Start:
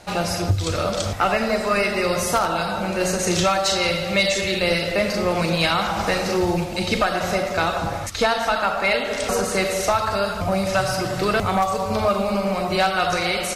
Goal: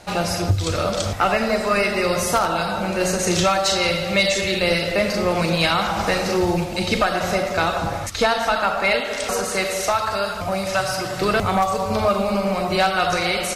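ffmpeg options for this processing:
ffmpeg -i in.wav -filter_complex "[0:a]asettb=1/sr,asplit=3[link_01][link_02][link_03];[link_01]atrim=end=9.004[link_04];[link_02]atrim=start=9:end=11.21,asetpts=PTS-STARTPTS,afade=type=in:duration=0.004:curve=qsin,afade=type=out:start_time=2.206:duration=0.004:curve=qsin,lowshelf=frequency=450:gain=-6.5[link_05];[link_03]atrim=start=11.206[link_06];[link_04][link_05]acrossfade=duration=0.004:curve1=hsin:curve2=qsin[link_07];[link_07][link_06]acrossfade=duration=0.004:curve1=qsin:curve2=hsin,volume=1dB" out.wav

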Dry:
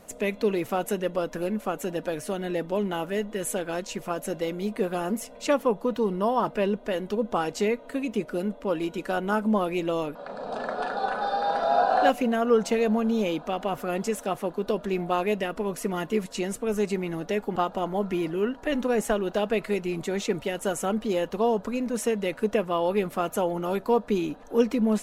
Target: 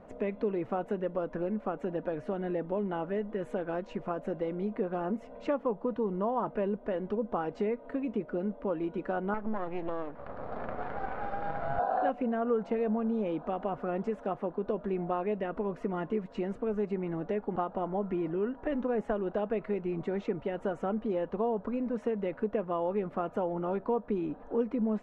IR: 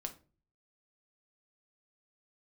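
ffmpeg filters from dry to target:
-filter_complex "[0:a]asettb=1/sr,asplit=3[link_01][link_02][link_03];[link_01]atrim=end=9.344[link_04];[link_02]atrim=start=9.34:end=11.79,asetpts=PTS-STARTPTS,afade=type=in:duration=0.004:curve=qsin,afade=type=out:start_time=2.446:duration=0.004:curve=qsin,aeval=exprs='max(val(0),0)':channel_layout=same[link_05];[link_03]atrim=start=11.786[link_06];[link_04][link_05]acrossfade=duration=0.004:curve1=hsin:curve2=qsin[link_07];[link_07][link_06]acrossfade=duration=0.004:curve1=qsin:curve2=hsin,lowpass=1400,acompressor=threshold=-32dB:ratio=2"

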